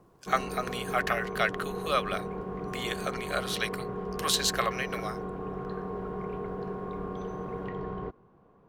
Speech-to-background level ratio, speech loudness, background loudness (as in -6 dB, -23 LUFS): 5.5 dB, -31.0 LUFS, -36.5 LUFS